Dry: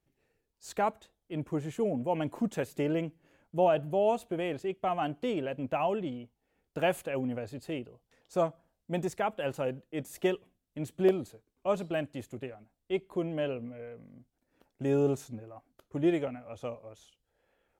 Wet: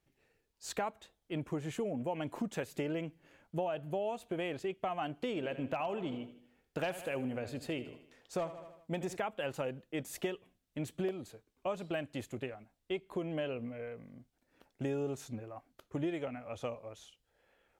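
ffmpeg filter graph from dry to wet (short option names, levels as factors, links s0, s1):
-filter_complex "[0:a]asettb=1/sr,asplit=3[s0][s1][s2];[s0]atrim=end=5.274[s3];[s1]atrim=start=5.27:end=9.17,asetpts=PTS-STARTPTS,afade=t=in:d=0.004:c=qsin,afade=t=out:st=3.896:d=0.004:c=qsin,asoftclip=type=hard:threshold=0.0944,aecho=1:1:78|156|234|312|390:0.188|0.0942|0.0471|0.0235|0.0118,atrim=end_sample=171990[s4];[s2]atrim=start=9.166[s5];[s3][s4]acrossfade=d=0.004:c1=hsin:c2=qsin[s6];[s6][s5]acrossfade=d=0.004:c1=qsin:c2=hsin,equalizer=f=2700:w=0.38:g=4.5,acompressor=threshold=0.0224:ratio=6"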